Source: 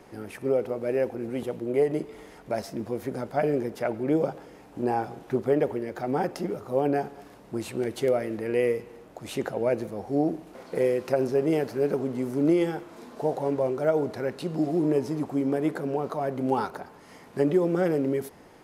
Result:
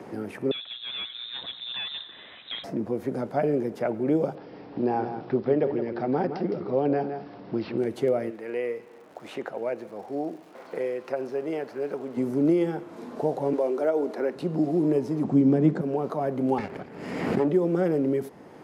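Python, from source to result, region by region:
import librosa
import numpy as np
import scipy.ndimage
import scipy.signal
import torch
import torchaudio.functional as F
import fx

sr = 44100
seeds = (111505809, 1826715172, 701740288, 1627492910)

y = fx.chain(x, sr, fx.echo_single(ms=89, db=-16.0),
    fx.clip_hard(threshold_db=-25.0),
    fx.freq_invert(carrier_hz=3900), at=(0.51, 2.64))
y = fx.chain(y, sr, fx.resample_bad(factor=4, down='none', up='filtered'),
    fx.echo_single(ms=163, db=-9.5), at=(4.35, 7.78))
y = fx.highpass(y, sr, hz=1100.0, slope=6, at=(8.29, 12.16), fade=0.02)
y = fx.high_shelf(y, sr, hz=5400.0, db=-9.0, at=(8.29, 12.16), fade=0.02)
y = fx.dmg_crackle(y, sr, seeds[0], per_s=240.0, level_db=-47.0, at=(8.29, 12.16), fade=0.02)
y = fx.chain(y, sr, fx.highpass(hz=260.0, slope=24),
    fx.band_squash(depth_pct=40), at=(13.53, 14.35))
y = fx.chain(y, sr, fx.lowpass(hz=7700.0, slope=24),
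    fx.peak_eq(hz=170.0, db=14.5, octaves=1.4), at=(15.24, 15.81))
y = fx.chain(y, sr, fx.lower_of_two(delay_ms=0.4),
    fx.high_shelf(hz=9500.0, db=-10.0),
    fx.pre_swell(db_per_s=54.0), at=(16.58, 17.48))
y = scipy.signal.sosfilt(scipy.signal.butter(2, 150.0, 'highpass', fs=sr, output='sos'), y)
y = fx.tilt_eq(y, sr, slope=-2.0)
y = fx.band_squash(y, sr, depth_pct=40)
y = F.gain(torch.from_numpy(y), -1.5).numpy()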